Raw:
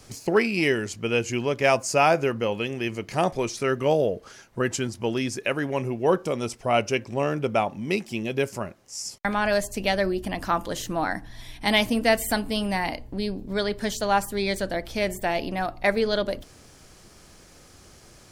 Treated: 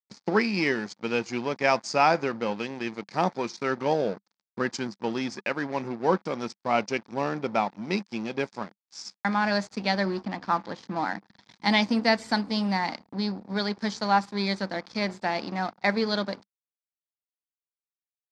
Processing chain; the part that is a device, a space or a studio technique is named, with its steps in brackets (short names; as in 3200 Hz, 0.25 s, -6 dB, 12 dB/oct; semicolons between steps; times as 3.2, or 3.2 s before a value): 10.23–11.5 air absorption 160 m; blown loudspeaker (crossover distortion -37.5 dBFS; speaker cabinet 190–5800 Hz, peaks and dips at 200 Hz +7 dB, 410 Hz -4 dB, 620 Hz -5 dB, 890 Hz +4 dB, 2900 Hz -8 dB, 4700 Hz +6 dB)